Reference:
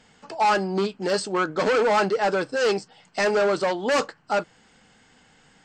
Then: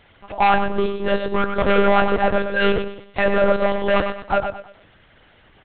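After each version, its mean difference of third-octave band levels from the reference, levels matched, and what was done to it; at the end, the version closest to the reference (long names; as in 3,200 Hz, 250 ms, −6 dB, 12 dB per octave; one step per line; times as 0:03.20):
8.0 dB: repeating echo 109 ms, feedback 32%, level −7 dB
one-pitch LPC vocoder at 8 kHz 200 Hz
level +4 dB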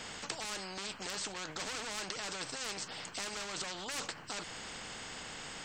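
15.5 dB: brickwall limiter −25.5 dBFS, peak gain reduction 11.5 dB
every bin compressed towards the loudest bin 4 to 1
level +5.5 dB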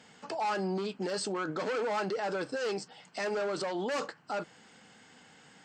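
4.5 dB: brickwall limiter −26 dBFS, peak gain reduction 12 dB
high-pass filter 130 Hz 12 dB per octave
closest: third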